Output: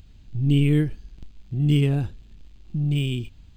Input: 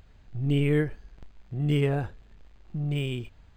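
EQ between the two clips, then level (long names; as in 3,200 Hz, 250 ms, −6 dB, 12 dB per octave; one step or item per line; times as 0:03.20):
flat-topped bell 940 Hz −11 dB 2.6 octaves
+6.0 dB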